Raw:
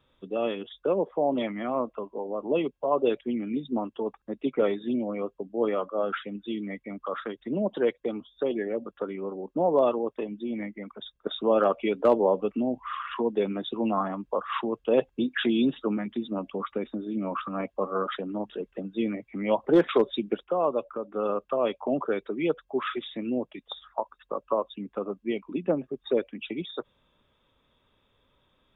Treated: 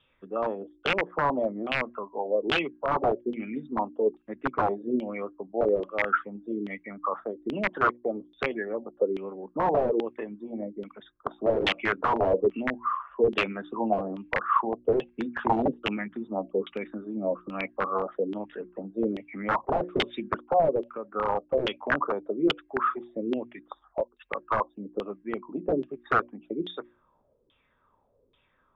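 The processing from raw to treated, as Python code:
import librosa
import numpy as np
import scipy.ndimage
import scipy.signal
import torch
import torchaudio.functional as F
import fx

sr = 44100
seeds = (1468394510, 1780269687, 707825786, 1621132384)

y = fx.hum_notches(x, sr, base_hz=60, count=6)
y = (np.mod(10.0 ** (18.0 / 20.0) * y + 1.0, 2.0) - 1.0) / 10.0 ** (18.0 / 20.0)
y = fx.filter_lfo_lowpass(y, sr, shape='saw_down', hz=1.2, low_hz=360.0, high_hz=3200.0, q=4.9)
y = y * 10.0 ** (-3.5 / 20.0)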